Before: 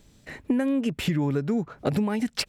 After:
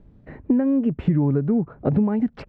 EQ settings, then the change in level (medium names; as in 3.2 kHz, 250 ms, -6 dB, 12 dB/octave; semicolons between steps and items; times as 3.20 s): low-pass 1.2 kHz 12 dB/octave; bass shelf 370 Hz +7.5 dB; 0.0 dB